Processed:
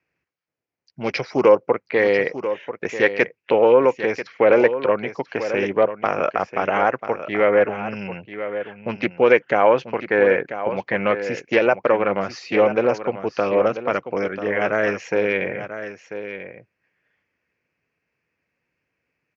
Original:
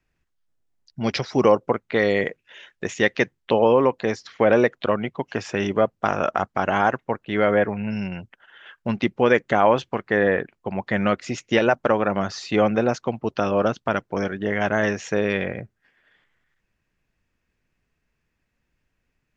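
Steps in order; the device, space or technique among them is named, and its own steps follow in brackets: low-pass 6.1 kHz 12 dB/octave; full-range speaker at full volume (loudspeaker Doppler distortion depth 0.19 ms; cabinet simulation 160–6500 Hz, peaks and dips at 220 Hz -5 dB, 500 Hz +5 dB, 2.3 kHz +7 dB, 3.6 kHz -9 dB); peaking EQ 79 Hz +2.5 dB; delay 990 ms -11 dB

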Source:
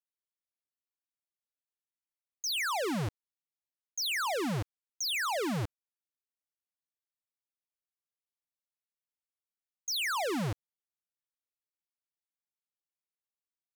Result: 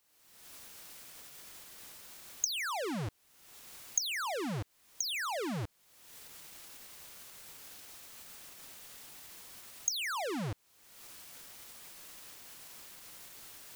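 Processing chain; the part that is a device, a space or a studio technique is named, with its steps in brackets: cheap recorder with automatic gain (white noise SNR 32 dB; recorder AGC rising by 46 dB/s); trim -4 dB

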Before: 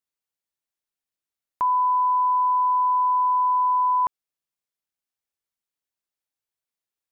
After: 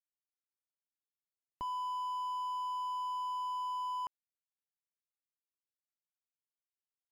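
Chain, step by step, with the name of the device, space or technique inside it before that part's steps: early transistor amplifier (crossover distortion -54 dBFS; slew-rate limiter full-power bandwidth 23 Hz); trim -3.5 dB

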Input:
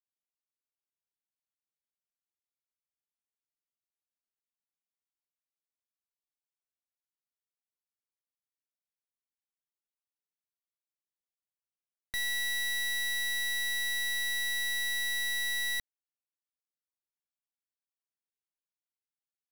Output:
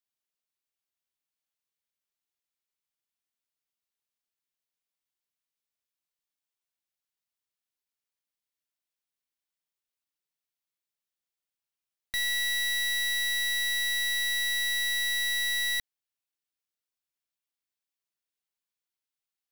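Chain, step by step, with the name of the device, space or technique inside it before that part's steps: presence and air boost (peaking EQ 3.3 kHz +5 dB 2 oct; treble shelf 11 kHz +5 dB)

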